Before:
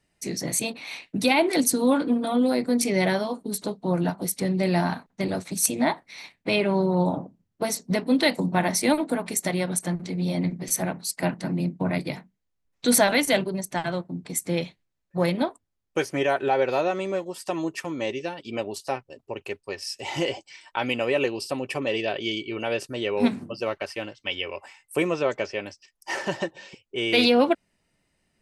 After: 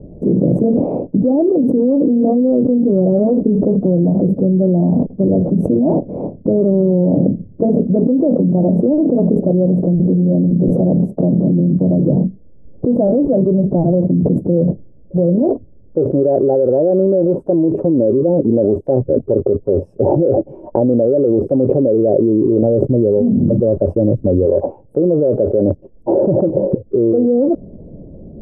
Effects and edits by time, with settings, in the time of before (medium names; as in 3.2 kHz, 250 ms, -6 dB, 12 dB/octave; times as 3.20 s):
22.62–24.46 s: tone controls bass +7 dB, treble +13 dB
whole clip: elliptic low-pass 560 Hz, stop band 70 dB; level flattener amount 100%